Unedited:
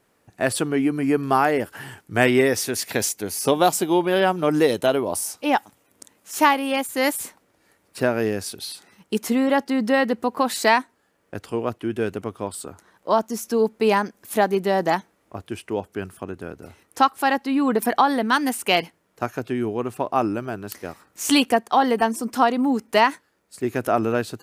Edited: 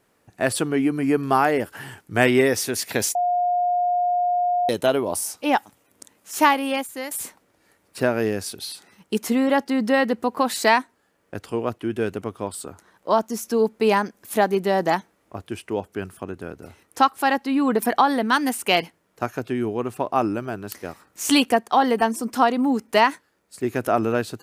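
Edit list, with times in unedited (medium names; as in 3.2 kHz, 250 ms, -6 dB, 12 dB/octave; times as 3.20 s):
3.15–4.69 s: bleep 712 Hz -18 dBFS
6.67–7.11 s: fade out, to -17 dB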